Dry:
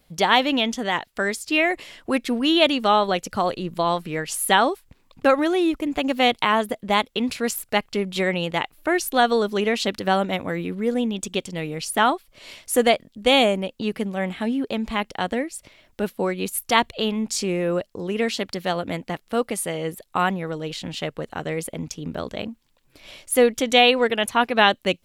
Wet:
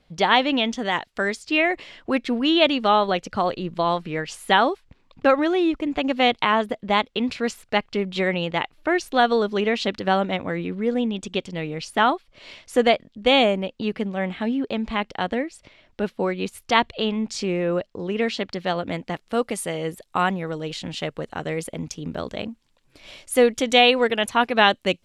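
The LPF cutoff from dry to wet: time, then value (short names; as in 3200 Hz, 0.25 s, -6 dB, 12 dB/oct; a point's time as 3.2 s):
0.67 s 4700 Hz
0.98 s 8500 Hz
1.51 s 4700 Hz
18.61 s 4700 Hz
19.4 s 9200 Hz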